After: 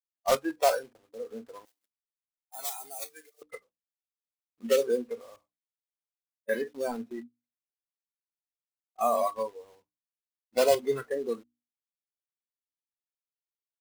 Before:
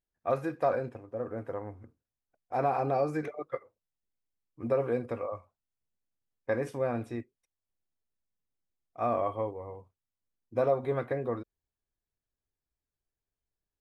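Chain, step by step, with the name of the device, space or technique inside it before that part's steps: gate -49 dBFS, range -8 dB; early digital voice recorder (BPF 220–3700 Hz; block floating point 3-bit); notches 60/120/180/240/300 Hz; spectral noise reduction 19 dB; 1.65–3.42 differentiator; gain +4.5 dB

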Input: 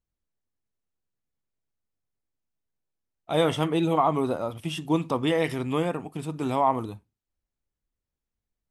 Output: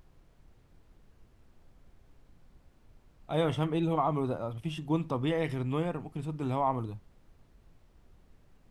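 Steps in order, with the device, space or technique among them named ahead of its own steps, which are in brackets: car interior (bell 120 Hz +8 dB 0.91 oct; high shelf 4700 Hz -7.5 dB; brown noise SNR 22 dB); gain -6.5 dB

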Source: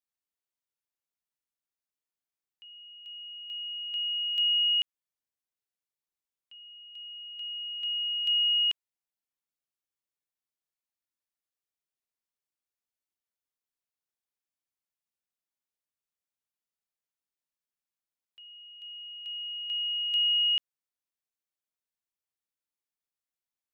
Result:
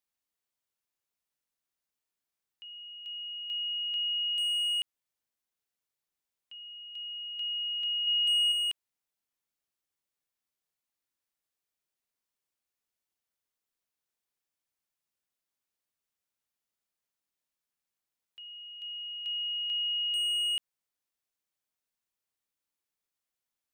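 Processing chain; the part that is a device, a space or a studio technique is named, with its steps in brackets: clipper into limiter (hard clip -25.5 dBFS, distortion -16 dB; limiter -31.5 dBFS, peak gain reduction 6 dB); 8.07–8.52 bell 2900 Hz +4 dB 0.39 oct; gain +3.5 dB

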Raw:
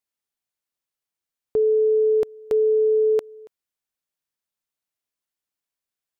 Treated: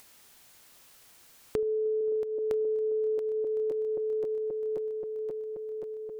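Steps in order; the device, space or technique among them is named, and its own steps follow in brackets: regenerating reverse delay 0.265 s, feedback 77%, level -11 dB; 1.58–2.01 low shelf 150 Hz +10.5 dB; upward and downward compression (upward compressor, threshold -32 dBFS; compressor 8:1, threshold -28 dBFS, peak gain reduction 15.5 dB)

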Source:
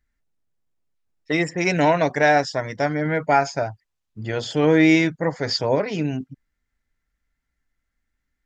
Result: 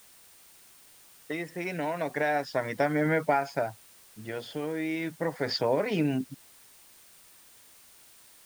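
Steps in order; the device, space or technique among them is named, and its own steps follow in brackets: medium wave at night (BPF 160–3800 Hz; compressor, threshold -21 dBFS, peak gain reduction 9.5 dB; tremolo 0.33 Hz, depth 65%; whine 9000 Hz -62 dBFS; white noise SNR 24 dB)

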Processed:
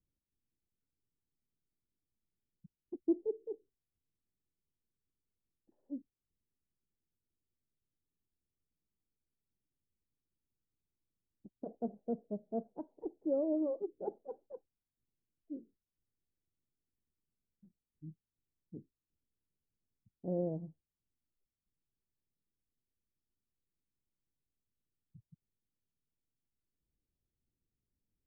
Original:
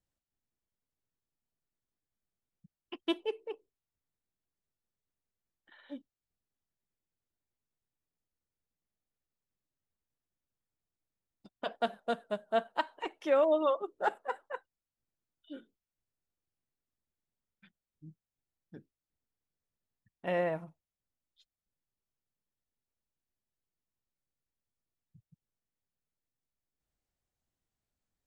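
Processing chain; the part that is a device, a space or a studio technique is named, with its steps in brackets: under water (LPF 420 Hz 24 dB/oct; bell 800 Hz +5.5 dB 0.23 oct); gain +2.5 dB

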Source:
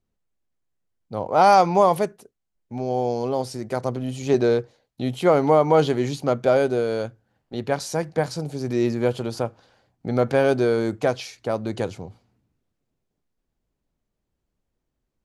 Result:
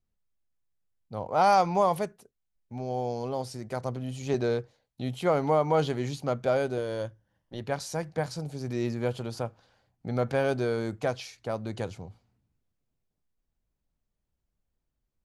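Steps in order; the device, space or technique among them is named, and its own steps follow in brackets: low shelf boost with a cut just above (low shelf 100 Hz +5.5 dB; bell 340 Hz -4 dB 1.2 oct); 6.77–7.61 ripple EQ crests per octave 1.2, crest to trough 8 dB; gain -6 dB

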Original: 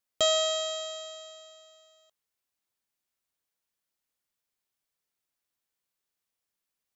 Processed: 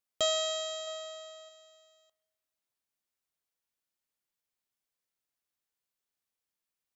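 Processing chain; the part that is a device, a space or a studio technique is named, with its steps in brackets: 0.87–1.49 bell 990 Hz +5 dB 2.5 oct; filtered reverb send (on a send: HPF 230 Hz 12 dB/oct + LPF 3500 Hz + reverb RT60 1.7 s, pre-delay 3 ms, DRR 17.5 dB); on the sum: gain -4 dB

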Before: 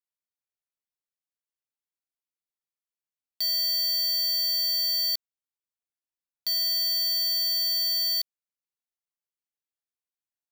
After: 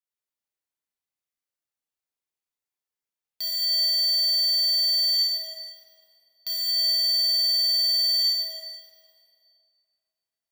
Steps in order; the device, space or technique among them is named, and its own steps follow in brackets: tunnel (flutter echo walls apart 5.6 m, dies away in 0.42 s; reverb RT60 2.4 s, pre-delay 63 ms, DRR -2.5 dB); gain -3.5 dB

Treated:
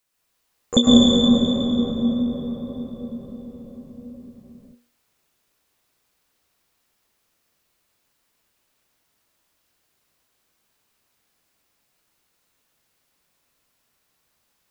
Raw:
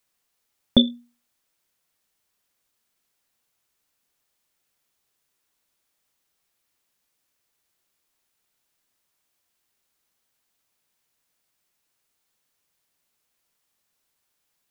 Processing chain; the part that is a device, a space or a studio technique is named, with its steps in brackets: shimmer-style reverb (harmoniser +12 st -11 dB; reverb RT60 5.9 s, pre-delay 0.101 s, DRR -8 dB); gain -1 dB

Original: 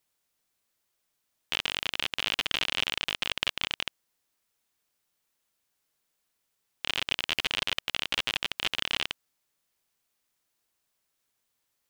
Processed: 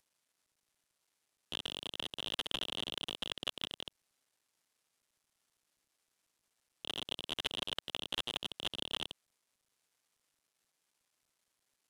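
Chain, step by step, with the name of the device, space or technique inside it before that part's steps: early wireless headset (HPF 230 Hz 24 dB/oct; CVSD 64 kbps); gain +1 dB

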